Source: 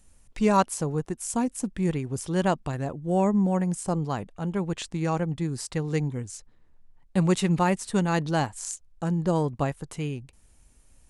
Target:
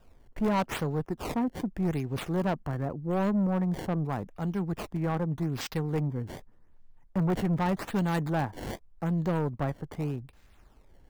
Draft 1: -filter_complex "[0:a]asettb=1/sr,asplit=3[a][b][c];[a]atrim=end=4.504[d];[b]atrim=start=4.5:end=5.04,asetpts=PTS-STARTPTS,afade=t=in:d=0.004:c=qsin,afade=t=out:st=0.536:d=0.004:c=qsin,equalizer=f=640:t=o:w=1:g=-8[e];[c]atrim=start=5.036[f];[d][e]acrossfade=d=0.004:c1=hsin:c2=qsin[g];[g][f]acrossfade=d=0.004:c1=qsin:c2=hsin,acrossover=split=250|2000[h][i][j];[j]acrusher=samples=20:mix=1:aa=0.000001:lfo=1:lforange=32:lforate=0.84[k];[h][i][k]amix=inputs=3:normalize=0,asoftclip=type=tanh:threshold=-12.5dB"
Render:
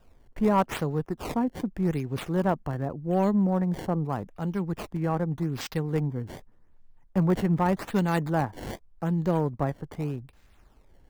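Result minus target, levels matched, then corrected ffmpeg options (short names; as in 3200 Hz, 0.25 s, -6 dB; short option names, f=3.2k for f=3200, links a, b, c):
soft clip: distortion -11 dB
-filter_complex "[0:a]asettb=1/sr,asplit=3[a][b][c];[a]atrim=end=4.504[d];[b]atrim=start=4.5:end=5.04,asetpts=PTS-STARTPTS,afade=t=in:d=0.004:c=qsin,afade=t=out:st=0.536:d=0.004:c=qsin,equalizer=f=640:t=o:w=1:g=-8[e];[c]atrim=start=5.036[f];[d][e]acrossfade=d=0.004:c1=hsin:c2=qsin[g];[g][f]acrossfade=d=0.004:c1=qsin:c2=hsin,acrossover=split=250|2000[h][i][j];[j]acrusher=samples=20:mix=1:aa=0.000001:lfo=1:lforange=32:lforate=0.84[k];[h][i][k]amix=inputs=3:normalize=0,asoftclip=type=tanh:threshold=-22dB"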